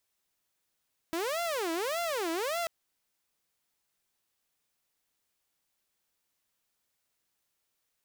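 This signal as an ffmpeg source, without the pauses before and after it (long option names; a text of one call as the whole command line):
ffmpeg -f lavfi -i "aevalsrc='0.0422*(2*mod((508*t-183/(2*PI*1.7)*sin(2*PI*1.7*t)),1)-1)':duration=1.54:sample_rate=44100" out.wav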